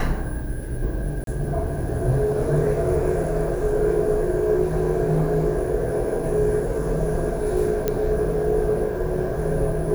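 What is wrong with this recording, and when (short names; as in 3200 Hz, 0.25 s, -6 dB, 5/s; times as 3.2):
1.24–1.27 gap 32 ms
7.88 pop -8 dBFS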